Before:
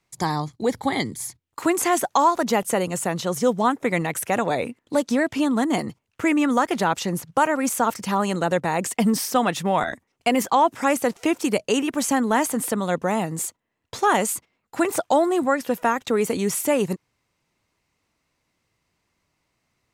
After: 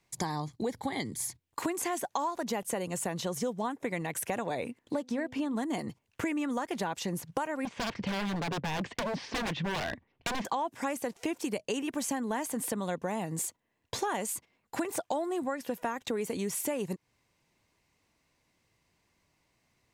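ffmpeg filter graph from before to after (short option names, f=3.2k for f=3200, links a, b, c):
-filter_complex "[0:a]asettb=1/sr,asplit=3[a][b][c];[a]atrim=end=4.934[d];[b]atrim=start=4.93:end=5.56,asetpts=PTS-STARTPTS,afade=t=in:d=0.004:c=qsin,afade=t=out:st=0.626:d=0.004:c=qsin,highshelf=f=4.7k:g=-9.5,bandreject=f=253.5:t=h:w=4,bandreject=f=507:t=h:w=4,bandreject=f=760.5:t=h:w=4[e];[c]atrim=start=5.556[f];[d][e]acrossfade=d=0.004:c1=hsin:c2=qsin[g];[g][f]acrossfade=d=0.004:c1=qsin:c2=hsin,asettb=1/sr,asplit=3[h][i][j];[h]atrim=end=7.654[k];[i]atrim=start=7.65:end=10.45,asetpts=PTS-STARTPTS,afade=t=in:d=0.004:c=qsin,afade=t=out:st=2.796:d=0.004:c=qsin,lowpass=f=3.7k:w=0.5412,lowpass=f=3.7k:w=1.3066,lowshelf=f=140:g=9,aeval=exprs='0.0841*(abs(mod(val(0)/0.0841+3,4)-2)-1)':c=same[l];[j]atrim=start=10.446[m];[k][l]acrossfade=d=0.004:c1=hsin:c2=qsin[n];[n][m]acrossfade=d=0.004:c1=qsin:c2=hsin,bandreject=f=1.3k:w=7.9,acompressor=threshold=-31dB:ratio=5"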